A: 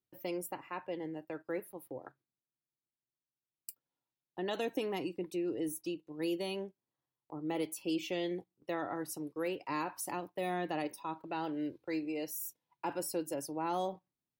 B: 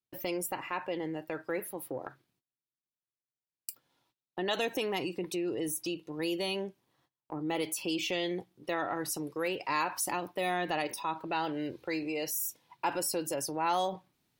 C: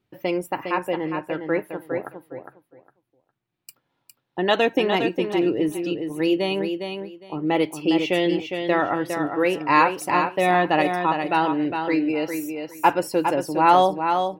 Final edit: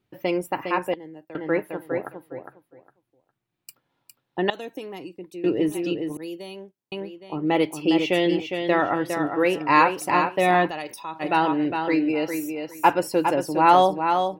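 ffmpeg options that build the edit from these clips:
ffmpeg -i take0.wav -i take1.wav -i take2.wav -filter_complex "[0:a]asplit=3[link_01][link_02][link_03];[2:a]asplit=5[link_04][link_05][link_06][link_07][link_08];[link_04]atrim=end=0.942[link_09];[link_01]atrim=start=0.938:end=1.352[link_10];[link_05]atrim=start=1.348:end=4.502[link_11];[link_02]atrim=start=4.498:end=5.442[link_12];[link_06]atrim=start=5.438:end=6.172[link_13];[link_03]atrim=start=6.168:end=6.922[link_14];[link_07]atrim=start=6.918:end=10.71[link_15];[1:a]atrim=start=10.67:end=11.23[link_16];[link_08]atrim=start=11.19[link_17];[link_09][link_10]acrossfade=duration=0.004:curve1=hsin:curve2=hsin[link_18];[link_18][link_11]acrossfade=duration=0.004:curve1=hsin:curve2=hsin[link_19];[link_19][link_12]acrossfade=duration=0.004:curve1=hsin:curve2=hsin[link_20];[link_20][link_13]acrossfade=duration=0.004:curve1=hsin:curve2=hsin[link_21];[link_21][link_14]acrossfade=duration=0.004:curve1=hsin:curve2=hsin[link_22];[link_22][link_15]acrossfade=duration=0.004:curve1=hsin:curve2=hsin[link_23];[link_23][link_16]acrossfade=duration=0.04:curve1=tri:curve2=tri[link_24];[link_24][link_17]acrossfade=duration=0.04:curve1=tri:curve2=tri" out.wav

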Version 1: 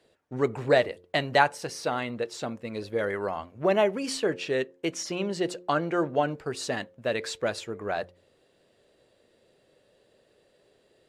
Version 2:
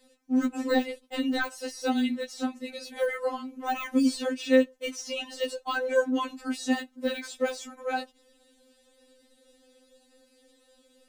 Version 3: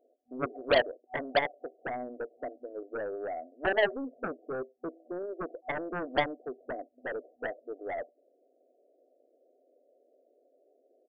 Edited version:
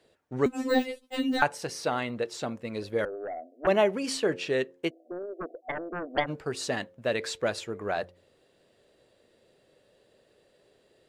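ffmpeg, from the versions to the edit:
ffmpeg -i take0.wav -i take1.wav -i take2.wav -filter_complex "[2:a]asplit=2[link_01][link_02];[0:a]asplit=4[link_03][link_04][link_05][link_06];[link_03]atrim=end=0.462[link_07];[1:a]atrim=start=0.458:end=1.422[link_08];[link_04]atrim=start=1.418:end=3.052[link_09];[link_01]atrim=start=3.048:end=3.672[link_10];[link_05]atrim=start=3.668:end=4.91[link_11];[link_02]atrim=start=4.87:end=6.3[link_12];[link_06]atrim=start=6.26[link_13];[link_07][link_08]acrossfade=duration=0.004:curve1=hsin:curve2=hsin[link_14];[link_14][link_09]acrossfade=duration=0.004:curve1=hsin:curve2=hsin[link_15];[link_15][link_10]acrossfade=duration=0.004:curve1=hsin:curve2=hsin[link_16];[link_16][link_11]acrossfade=duration=0.004:curve1=hsin:curve2=hsin[link_17];[link_17][link_12]acrossfade=duration=0.04:curve1=tri:curve2=tri[link_18];[link_18][link_13]acrossfade=duration=0.04:curve1=tri:curve2=tri" out.wav

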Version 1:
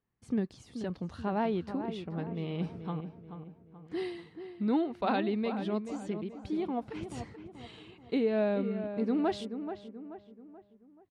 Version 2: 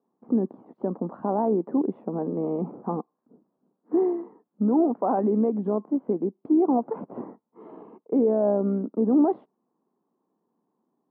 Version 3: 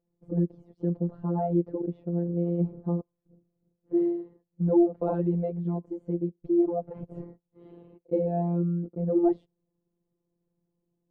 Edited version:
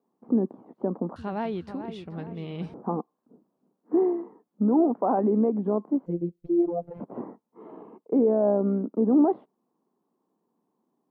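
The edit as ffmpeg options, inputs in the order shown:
ffmpeg -i take0.wav -i take1.wav -i take2.wav -filter_complex "[1:a]asplit=3[link_01][link_02][link_03];[link_01]atrim=end=1.162[link_04];[0:a]atrim=start=1.158:end=2.742[link_05];[link_02]atrim=start=2.738:end=6.062[link_06];[2:a]atrim=start=6.058:end=7.002[link_07];[link_03]atrim=start=6.998[link_08];[link_04][link_05]acrossfade=duration=0.004:curve1=hsin:curve2=hsin[link_09];[link_09][link_06]acrossfade=duration=0.004:curve1=hsin:curve2=hsin[link_10];[link_10][link_07]acrossfade=duration=0.004:curve1=hsin:curve2=hsin[link_11];[link_11][link_08]acrossfade=duration=0.004:curve1=hsin:curve2=hsin" out.wav

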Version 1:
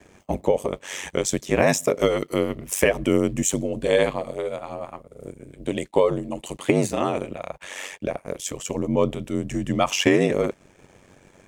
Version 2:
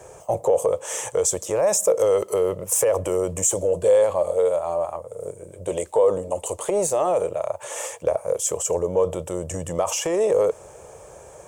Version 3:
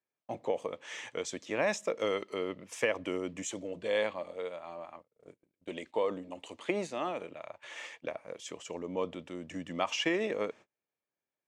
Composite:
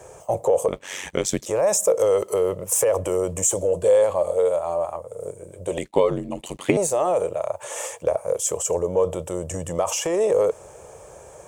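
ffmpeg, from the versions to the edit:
ffmpeg -i take0.wav -i take1.wav -filter_complex "[0:a]asplit=2[link_01][link_02];[1:a]asplit=3[link_03][link_04][link_05];[link_03]atrim=end=0.682[link_06];[link_01]atrim=start=0.678:end=1.462[link_07];[link_04]atrim=start=1.458:end=5.782[link_08];[link_02]atrim=start=5.778:end=6.772[link_09];[link_05]atrim=start=6.768[link_10];[link_06][link_07]acrossfade=duration=0.004:curve1=hsin:curve2=hsin[link_11];[link_11][link_08]acrossfade=duration=0.004:curve1=hsin:curve2=hsin[link_12];[link_12][link_09]acrossfade=duration=0.004:curve1=hsin:curve2=hsin[link_13];[link_13][link_10]acrossfade=duration=0.004:curve1=hsin:curve2=hsin" out.wav

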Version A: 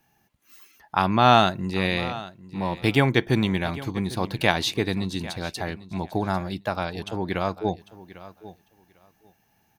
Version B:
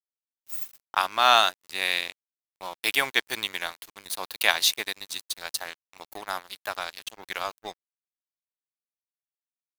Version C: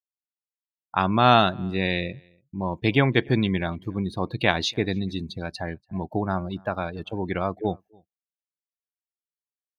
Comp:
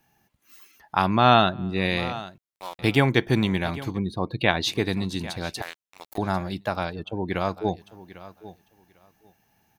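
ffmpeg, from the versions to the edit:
ffmpeg -i take0.wav -i take1.wav -i take2.wav -filter_complex "[2:a]asplit=3[link_01][link_02][link_03];[1:a]asplit=2[link_04][link_05];[0:a]asplit=6[link_06][link_07][link_08][link_09][link_10][link_11];[link_06]atrim=end=1.31[link_12];[link_01]atrim=start=1.07:end=1.96[link_13];[link_07]atrim=start=1.72:end=2.382[link_14];[link_04]atrim=start=2.378:end=2.792[link_15];[link_08]atrim=start=2.788:end=3.99[link_16];[link_02]atrim=start=3.93:end=4.69[link_17];[link_09]atrim=start=4.63:end=5.622[link_18];[link_05]atrim=start=5.618:end=6.182[link_19];[link_10]atrim=start=6.178:end=6.97[link_20];[link_03]atrim=start=6.87:end=7.37[link_21];[link_11]atrim=start=7.27[link_22];[link_12][link_13]acrossfade=duration=0.24:curve1=tri:curve2=tri[link_23];[link_23][link_14]acrossfade=duration=0.24:curve1=tri:curve2=tri[link_24];[link_24][link_15]acrossfade=duration=0.004:curve1=hsin:curve2=hsin[link_25];[link_25][link_16]acrossfade=duration=0.004:curve1=hsin:curve2=hsin[link_26];[link_26][link_17]acrossfade=duration=0.06:curve1=tri:curve2=tri[link_27];[link_27][link_18]acrossfade=duration=0.06:curve1=tri:curve2=tri[link_28];[link_28][link_19]acrossfade=duration=0.004:curve1=hsin:curve2=hsin[link_29];[link_29][link_20]acrossfade=duration=0.004:curve1=hsin:curve2=hsin[link_30];[link_30][link_21]acrossfade=duration=0.1:curve1=tri:curve2=tri[link_31];[link_31][link_22]acrossfade=duration=0.1:curve1=tri:curve2=tri" out.wav

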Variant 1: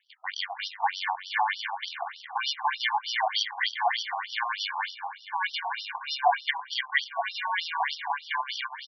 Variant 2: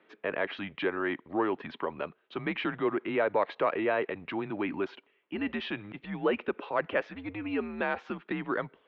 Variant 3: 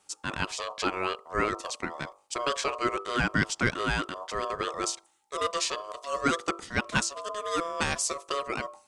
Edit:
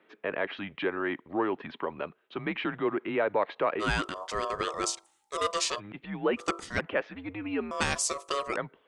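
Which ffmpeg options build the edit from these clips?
ffmpeg -i take0.wav -i take1.wav -i take2.wav -filter_complex "[2:a]asplit=3[link_01][link_02][link_03];[1:a]asplit=4[link_04][link_05][link_06][link_07];[link_04]atrim=end=3.83[link_08];[link_01]atrim=start=3.79:end=5.81[link_09];[link_05]atrim=start=5.77:end=6.42[link_10];[link_02]atrim=start=6.36:end=6.82[link_11];[link_06]atrim=start=6.76:end=7.712[link_12];[link_03]atrim=start=7.708:end=8.562[link_13];[link_07]atrim=start=8.558[link_14];[link_08][link_09]acrossfade=duration=0.04:curve1=tri:curve2=tri[link_15];[link_15][link_10]acrossfade=duration=0.04:curve1=tri:curve2=tri[link_16];[link_16][link_11]acrossfade=duration=0.06:curve1=tri:curve2=tri[link_17];[link_17][link_12]acrossfade=duration=0.06:curve1=tri:curve2=tri[link_18];[link_18][link_13]acrossfade=duration=0.004:curve1=hsin:curve2=hsin[link_19];[link_19][link_14]acrossfade=duration=0.004:curve1=hsin:curve2=hsin" out.wav

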